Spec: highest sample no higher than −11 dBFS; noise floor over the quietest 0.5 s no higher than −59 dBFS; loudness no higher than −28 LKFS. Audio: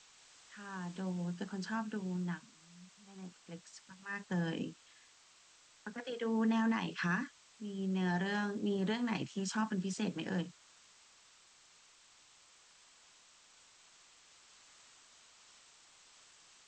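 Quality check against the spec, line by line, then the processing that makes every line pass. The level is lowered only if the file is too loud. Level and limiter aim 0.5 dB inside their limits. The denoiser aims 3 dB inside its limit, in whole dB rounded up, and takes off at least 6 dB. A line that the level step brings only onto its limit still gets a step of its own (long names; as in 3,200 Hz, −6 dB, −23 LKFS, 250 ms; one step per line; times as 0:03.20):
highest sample −22.5 dBFS: in spec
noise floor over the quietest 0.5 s −64 dBFS: in spec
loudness −37.5 LKFS: in spec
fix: no processing needed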